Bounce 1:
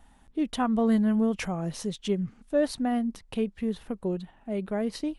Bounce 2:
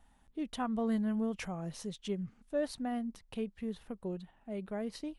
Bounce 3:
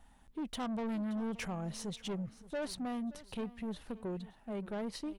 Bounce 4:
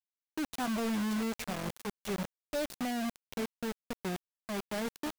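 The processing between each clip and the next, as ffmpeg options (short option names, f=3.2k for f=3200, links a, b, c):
-af "equalizer=f=310:w=1.5:g=-2,volume=-8dB"
-af "asoftclip=type=tanh:threshold=-37.5dB,aecho=1:1:575|1150:0.126|0.0352,volume=3.5dB"
-af "acrusher=bits=5:mix=0:aa=0.000001"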